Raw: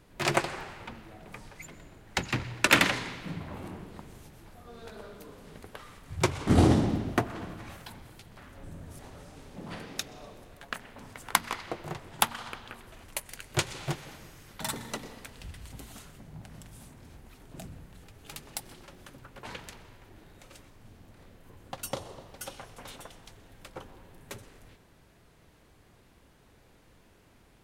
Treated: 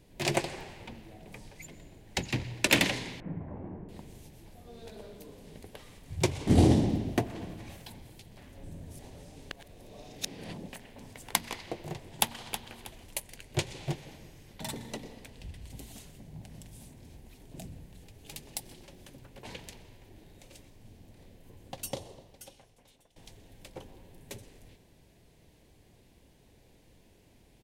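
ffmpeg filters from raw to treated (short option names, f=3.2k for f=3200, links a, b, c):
-filter_complex "[0:a]asettb=1/sr,asplit=3[a][b][c];[a]atrim=end=3.204[d];[b]atrim=start=3.2:end=3.89,asetpts=PTS-STARTPTS,afade=t=in:d=0.004:c=qsin,afade=t=out:st=0.686:d=0.004:c=qsin,lowpass=f=1.6k:w=0.5412,lowpass=f=1.6k:w=1.3066[e];[c]atrim=start=3.886[f];[d][e]acrossfade=d=0.004:c1=hsin:c2=qsin[g];[g][f]acrossfade=d=0.004:c1=qsin:c2=hsin,asplit=2[h][i];[i]afade=t=in:st=12.03:d=0.01,afade=t=out:st=12.61:d=0.01,aecho=0:1:320|640|960:0.316228|0.0948683|0.0284605[j];[h][j]amix=inputs=2:normalize=0,asettb=1/sr,asplit=3[k][l][m];[k]atrim=end=13.264[n];[l]atrim=start=13.26:end=15.7,asetpts=PTS-STARTPTS,afade=t=in:d=0.004:c=qsin,afade=t=out:st=2.436:d=0.004:c=qsin,highshelf=f=4.2k:g=-7[o];[m]atrim=start=15.696[p];[n][o]acrossfade=d=0.004:c1=hsin:c2=qsin[q];[q][p]acrossfade=d=0.004:c1=qsin:c2=hsin,asplit=4[r][s][t][u];[r]atrim=end=9.512[v];[s]atrim=start=9.508:end=10.732,asetpts=PTS-STARTPTS,areverse[w];[t]atrim=start=10.728:end=23.16,asetpts=PTS-STARTPTS,afade=t=out:st=11.162:d=1.27:c=qua:silence=0.125893[x];[u]atrim=start=23.16,asetpts=PTS-STARTPTS,afade=t=in:d=0.004:c=hsin:silence=0.125893[y];[v][w]acrossfade=d=0.004:c1=hsin:c2=hsin[z];[x][y]concat=n=2:v=0:a=1[aa];[z][aa]acrossfade=d=0.004:c1=hsin:c2=hsin,equalizer=f=1.3k:t=o:w=0.73:g=-14.5"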